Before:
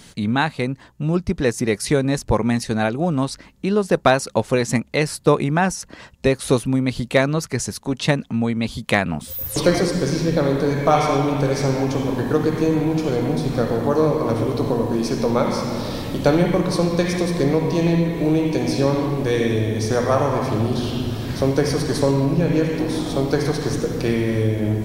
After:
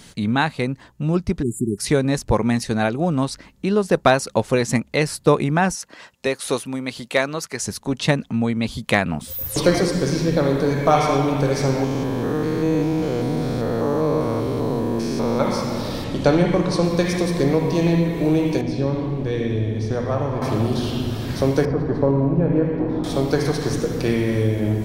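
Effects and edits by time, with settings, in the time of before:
1.42–1.78 spectral delete 420–6900 Hz
5.75–7.63 HPF 560 Hz 6 dB/oct
11.84–15.4 stepped spectrum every 0.2 s
16.04–16.84 LPF 8200 Hz
18.61–20.42 EQ curve 110 Hz 0 dB, 1200 Hz -8 dB, 3400 Hz -7 dB, 13000 Hz -22 dB
21.65–23.04 LPF 1200 Hz

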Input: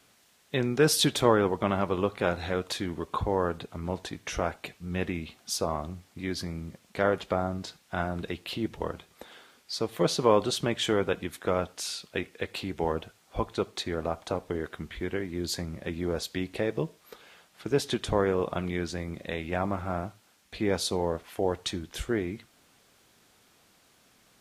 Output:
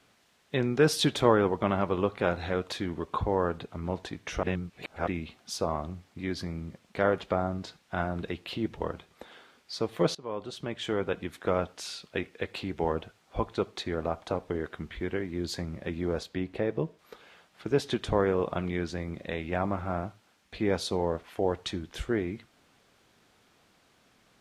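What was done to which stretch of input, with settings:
4.43–5.07 reverse
10.15–11.44 fade in, from -22 dB
16.23–16.99 high shelf 2400 Hz -7.5 dB
whole clip: high shelf 6500 Hz -12 dB

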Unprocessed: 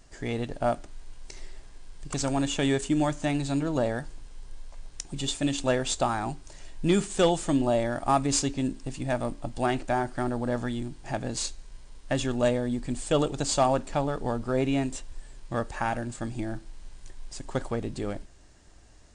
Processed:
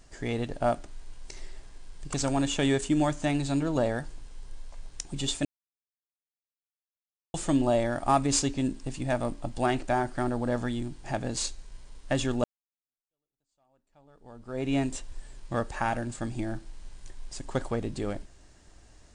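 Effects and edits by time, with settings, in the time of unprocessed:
5.45–7.34 mute
12.44–14.75 fade in exponential

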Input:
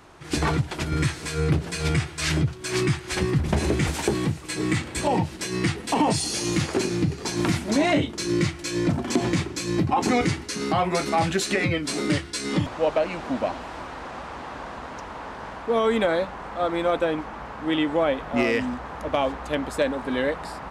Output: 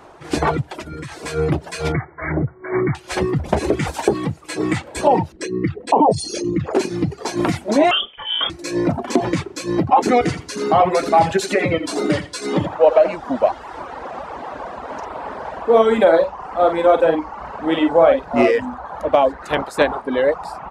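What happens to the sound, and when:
0.62–1.12 compressor 8:1, threshold -28 dBFS
1.92–2.95 brick-wall FIR low-pass 2300 Hz
5.32–6.75 formant sharpening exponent 2
7.91–8.5 inverted band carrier 3400 Hz
10.17–13.16 feedback echo 84 ms, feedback 29%, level -6 dB
14.84–18.51 doubler 49 ms -4 dB
19.41–20 spectral limiter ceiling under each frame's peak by 14 dB
whole clip: reverb removal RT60 1 s; bell 630 Hz +11 dB 2.2 oct

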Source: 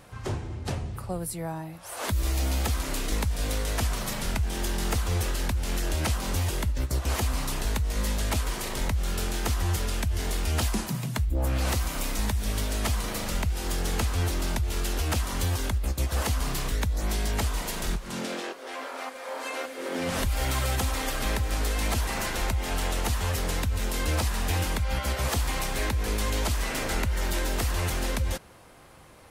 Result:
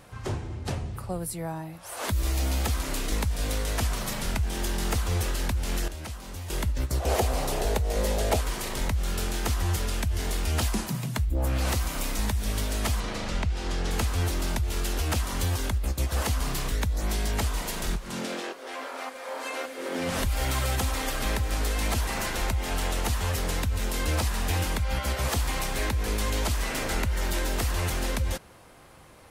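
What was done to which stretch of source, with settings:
5.88–6.5 gain -10.5 dB
7–8.41 band shelf 550 Hz +10.5 dB 1.3 oct
13–13.91 LPF 5500 Hz

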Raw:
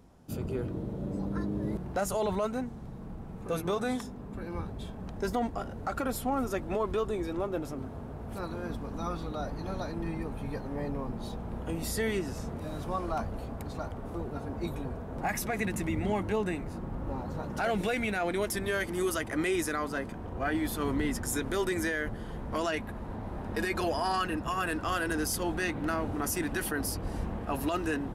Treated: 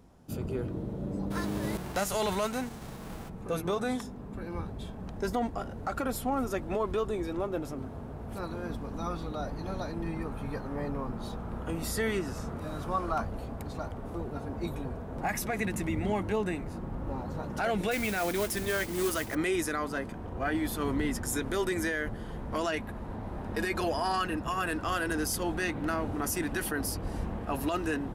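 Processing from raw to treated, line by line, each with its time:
1.3–3.28 spectral whitening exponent 0.6
10.16–13.25 bell 1300 Hz +6.5 dB 0.56 oct
17.91–19.35 modulation noise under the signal 11 dB

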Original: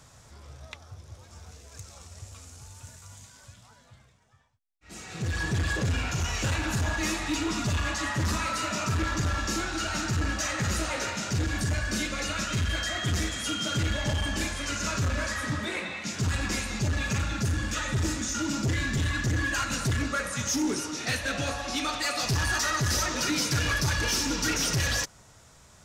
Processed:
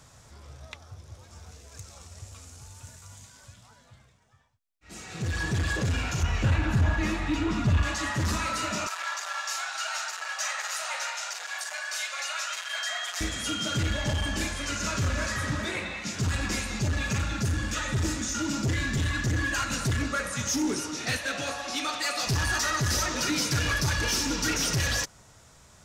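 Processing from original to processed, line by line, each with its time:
6.23–7.83 tone controls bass +6 dB, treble -12 dB
8.87–13.21 steep high-pass 670 Hz
14.58–15.33 echo throw 0.38 s, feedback 35%, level -9.5 dB
21.17–22.27 HPF 330 Hz 6 dB/oct

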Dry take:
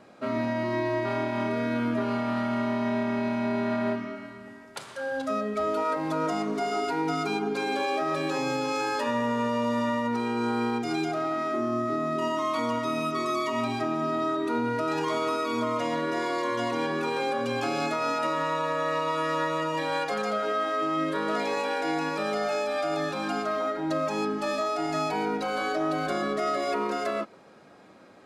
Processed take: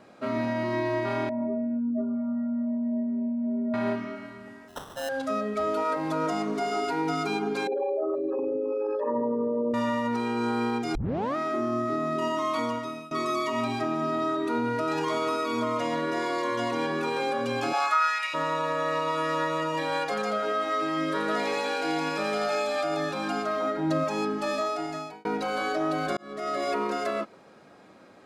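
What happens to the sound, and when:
1.29–3.74 spectral contrast raised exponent 2.9
4.68–5.09 sample-rate reducer 2300 Hz
7.67–9.74 formant sharpening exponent 3
10.95 tape start 0.41 s
12.61–13.11 fade out, to -21.5 dB
17.72–18.33 resonant high-pass 810 Hz -> 2500 Hz, resonance Q 3.9
20.53–22.83 thin delay 85 ms, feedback 66%, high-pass 1600 Hz, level -4 dB
23.62–24.04 bell 160 Hz +7 dB 1.6 oct
24.65–25.25 fade out
26.17–26.63 fade in linear

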